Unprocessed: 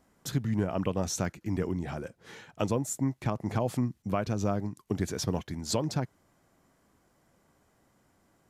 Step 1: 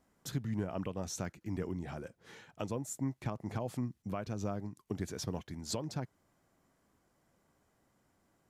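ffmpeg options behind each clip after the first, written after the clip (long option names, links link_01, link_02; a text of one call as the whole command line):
ffmpeg -i in.wav -af "alimiter=limit=-18dB:level=0:latency=1:release=489,volume=-6dB" out.wav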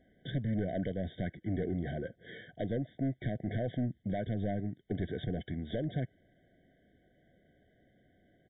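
ffmpeg -i in.wav -af "aresample=8000,asoftclip=type=tanh:threshold=-34.5dB,aresample=44100,afftfilt=real='re*eq(mod(floor(b*sr/1024/750),2),0)':imag='im*eq(mod(floor(b*sr/1024/750),2),0)':win_size=1024:overlap=0.75,volume=7.5dB" out.wav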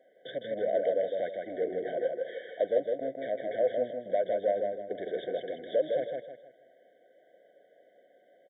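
ffmpeg -i in.wav -filter_complex "[0:a]highpass=frequency=530:width_type=q:width=4.9,asplit=2[link_01][link_02];[link_02]aecho=0:1:158|316|474|632:0.631|0.215|0.0729|0.0248[link_03];[link_01][link_03]amix=inputs=2:normalize=0" out.wav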